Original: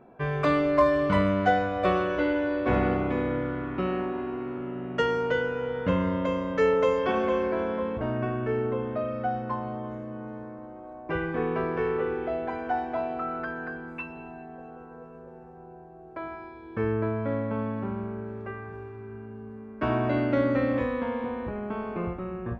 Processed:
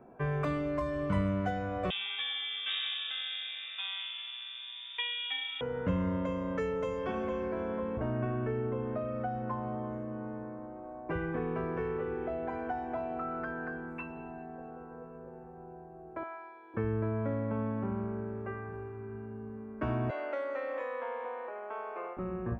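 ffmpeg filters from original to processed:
-filter_complex "[0:a]asettb=1/sr,asplit=3[s0][s1][s2];[s0]atrim=end=1.904[s3];[s1]atrim=start=1.9:end=5.61,asetpts=PTS-STARTPTS,afade=t=in:d=0.004:c=qsin,afade=t=out:st=3.706:d=0.004:c=qsin,lowpass=f=3200:t=q:w=0.5098,lowpass=f=3200:t=q:w=0.6013,lowpass=f=3200:t=q:w=0.9,lowpass=f=3200:t=q:w=2.563,afreqshift=-3800[s4];[s2]atrim=start=5.606[s5];[s3][s4]acrossfade=d=0.004:c1=hsin:c2=qsin[s6];[s6][s5]acrossfade=d=0.004:c1=qsin:c2=hsin,asettb=1/sr,asplit=3[s7][s8][s9];[s7]atrim=end=16.234[s10];[s8]atrim=start=16.23:end=16.74,asetpts=PTS-STARTPTS,afade=t=in:d=0.004:c=qsin,afade=t=out:st=0.506:d=0.004:c=qsin,highpass=690,lowpass=5300[s11];[s9]atrim=start=16.736[s12];[s10][s11]acrossfade=d=0.004:c1=hsin:c2=qsin[s13];[s13][s12]acrossfade=d=0.004:c1=qsin:c2=hsin,asettb=1/sr,asplit=3[s14][s15][s16];[s14]atrim=end=20.104[s17];[s15]atrim=start=20.1:end=22.17,asetpts=PTS-STARTPTS,afade=t=in:d=0.004:c=qsin,afade=t=out:st=2.066:d=0.004:c=qsin,highpass=f=510:w=0.5412,highpass=f=510:w=1.3066[s18];[s16]atrim=start=22.166[s19];[s17][s18]acrossfade=d=0.004:c1=hsin:c2=qsin[s20];[s20][s19]acrossfade=d=0.004:c1=qsin:c2=hsin,acrossover=split=190|3000[s21][s22][s23];[s22]acompressor=threshold=0.0282:ratio=6[s24];[s21][s24][s23]amix=inputs=3:normalize=0,equalizer=f=4300:t=o:w=1.2:g=-12,volume=0.841"

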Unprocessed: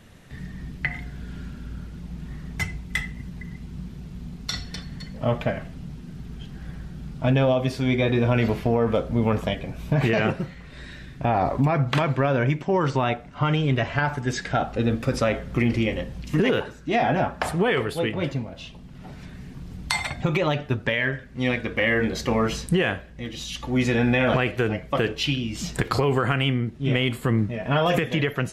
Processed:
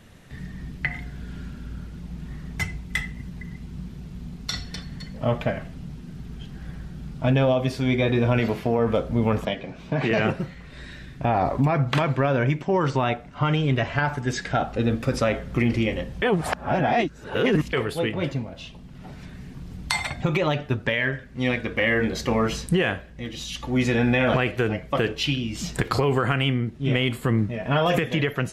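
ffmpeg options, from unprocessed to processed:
-filter_complex "[0:a]asettb=1/sr,asplit=3[s0][s1][s2];[s0]atrim=end=8.394[s3];[s1]atrim=start=8.39:end=8.79,asetpts=PTS-STARTPTS,afade=t=in:d=0.004:c=qsin,afade=t=out:st=0.396:d=0.004:c=qsin,highpass=f=140:p=1[s4];[s2]atrim=start=8.786[s5];[s3][s4]acrossfade=d=0.004:c1=hsin:c2=qsin[s6];[s6][s5]acrossfade=d=0.004:c1=qsin:c2=hsin,asettb=1/sr,asplit=3[s7][s8][s9];[s7]atrim=end=9.454[s10];[s8]atrim=start=9.45:end=10.11,asetpts=PTS-STARTPTS,afade=t=in:d=0.004:c=qsin,afade=t=out:st=0.656:d=0.004:c=qsin,acrossover=split=160 6600:gain=0.224 1 0.0794[s11][s12][s13];[s11][s12][s13]amix=inputs=3:normalize=0[s14];[s9]atrim=start=10.106[s15];[s10][s14]acrossfade=d=0.004:c1=hsin:c2=qsin[s16];[s16][s15]acrossfade=d=0.004:c1=qsin:c2=hsin,asplit=3[s17][s18][s19];[s17]atrim=end=16.222[s20];[s18]atrim=start=16.218:end=17.732,asetpts=PTS-STARTPTS,areverse[s21];[s19]atrim=start=17.728[s22];[s20][s21]acrossfade=d=0.004:c1=hsin:c2=hsin[s23];[s23][s22]acrossfade=d=0.004:c1=hsin:c2=hsin"

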